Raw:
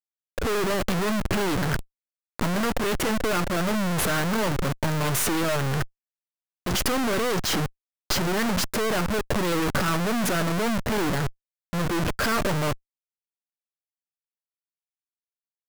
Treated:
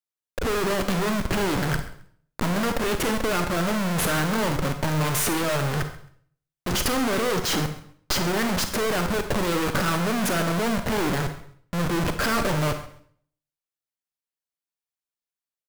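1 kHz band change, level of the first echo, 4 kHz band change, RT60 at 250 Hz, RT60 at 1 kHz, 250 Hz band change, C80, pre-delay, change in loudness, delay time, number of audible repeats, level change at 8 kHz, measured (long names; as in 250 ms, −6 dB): +1.0 dB, −17.0 dB, +1.0 dB, 0.65 s, 0.55 s, +0.5 dB, 12.0 dB, 32 ms, +0.5 dB, 134 ms, 2, +0.5 dB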